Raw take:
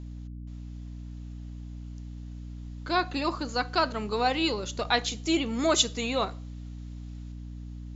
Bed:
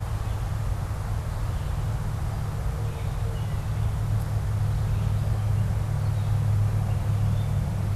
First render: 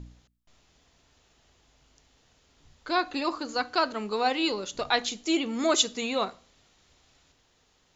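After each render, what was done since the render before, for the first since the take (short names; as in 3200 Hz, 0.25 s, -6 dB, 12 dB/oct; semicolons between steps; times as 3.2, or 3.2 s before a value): de-hum 60 Hz, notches 5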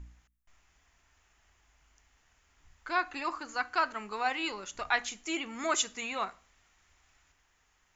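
ten-band EQ 125 Hz -10 dB, 250 Hz -8 dB, 500 Hz -11 dB, 2000 Hz +4 dB, 4000 Hz -12 dB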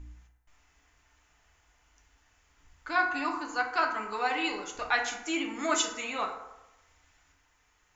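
FDN reverb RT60 0.96 s, low-frequency decay 0.75×, high-frequency decay 0.45×, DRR 1.5 dB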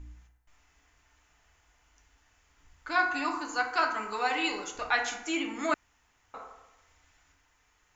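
2.91–4.69 high shelf 6200 Hz +8.5 dB; 5.74–6.34 room tone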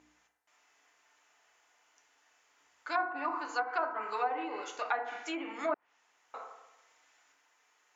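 treble ducked by the level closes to 850 Hz, closed at -25 dBFS; Chebyshev high-pass 490 Hz, order 2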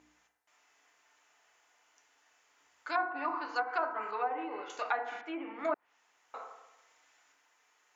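2.91–3.56 steep low-pass 5500 Hz 48 dB/oct; 4.11–4.7 air absorption 310 m; 5.21–5.65 air absorption 470 m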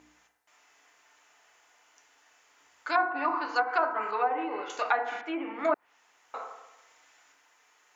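gain +6 dB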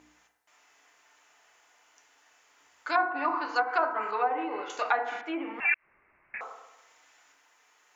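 5.6–6.41 inverted band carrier 3000 Hz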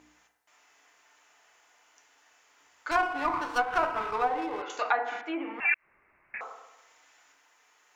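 2.91–4.62 running maximum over 5 samples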